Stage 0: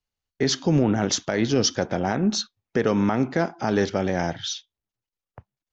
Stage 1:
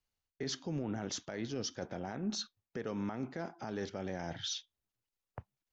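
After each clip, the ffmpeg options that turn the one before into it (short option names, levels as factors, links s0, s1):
-af "areverse,acompressor=threshold=0.0316:ratio=6,areverse,alimiter=level_in=1.41:limit=0.0631:level=0:latency=1:release=215,volume=0.708,volume=0.841"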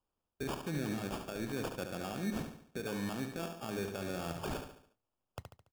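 -filter_complex "[0:a]acrusher=samples=22:mix=1:aa=0.000001,asplit=2[s0][s1];[s1]aecho=0:1:71|142|213|284|355:0.447|0.201|0.0905|0.0407|0.0183[s2];[s0][s2]amix=inputs=2:normalize=0"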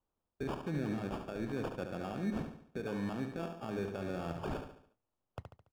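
-af "lowpass=f=1600:p=1,volume=1.12"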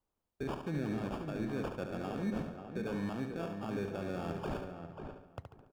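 -filter_complex "[0:a]asplit=2[s0][s1];[s1]adelay=539,lowpass=f=1900:p=1,volume=0.447,asplit=2[s2][s3];[s3]adelay=539,lowpass=f=1900:p=1,volume=0.18,asplit=2[s4][s5];[s5]adelay=539,lowpass=f=1900:p=1,volume=0.18[s6];[s0][s2][s4][s6]amix=inputs=4:normalize=0"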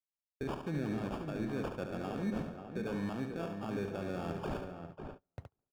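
-af "agate=range=0.0316:threshold=0.00447:ratio=16:detection=peak"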